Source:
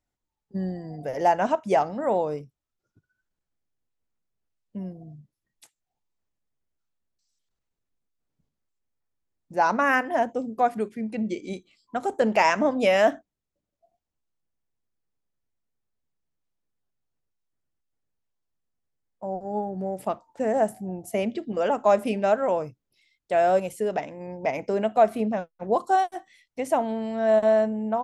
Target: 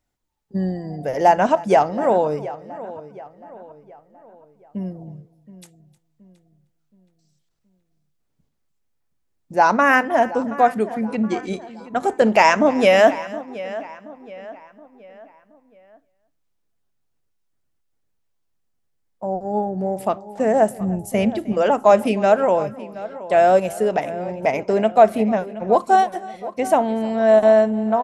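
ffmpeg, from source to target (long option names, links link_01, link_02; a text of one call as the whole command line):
ffmpeg -i in.wav -filter_complex "[0:a]asplit=2[link_01][link_02];[link_02]aecho=0:1:309:0.0944[link_03];[link_01][link_03]amix=inputs=2:normalize=0,asplit=3[link_04][link_05][link_06];[link_04]afade=type=out:start_time=20.78:duration=0.02[link_07];[link_05]asubboost=boost=3:cutoff=190,afade=type=in:start_time=20.78:duration=0.02,afade=type=out:start_time=21.53:duration=0.02[link_08];[link_06]afade=type=in:start_time=21.53:duration=0.02[link_09];[link_07][link_08][link_09]amix=inputs=3:normalize=0,asplit=2[link_10][link_11];[link_11]adelay=723,lowpass=frequency=3400:poles=1,volume=-16dB,asplit=2[link_12][link_13];[link_13]adelay=723,lowpass=frequency=3400:poles=1,volume=0.44,asplit=2[link_14][link_15];[link_15]adelay=723,lowpass=frequency=3400:poles=1,volume=0.44,asplit=2[link_16][link_17];[link_17]adelay=723,lowpass=frequency=3400:poles=1,volume=0.44[link_18];[link_12][link_14][link_16][link_18]amix=inputs=4:normalize=0[link_19];[link_10][link_19]amix=inputs=2:normalize=0,volume=6.5dB" out.wav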